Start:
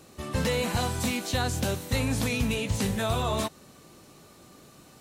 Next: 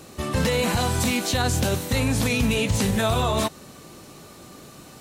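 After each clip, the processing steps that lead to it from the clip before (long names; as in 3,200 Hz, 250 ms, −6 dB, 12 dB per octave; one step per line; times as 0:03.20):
brickwall limiter −21.5 dBFS, peak gain reduction 6 dB
level +8 dB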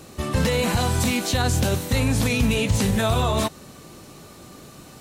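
low-shelf EQ 130 Hz +4 dB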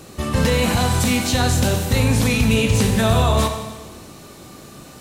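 four-comb reverb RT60 1.3 s, combs from 28 ms, DRR 5.5 dB
level +2.5 dB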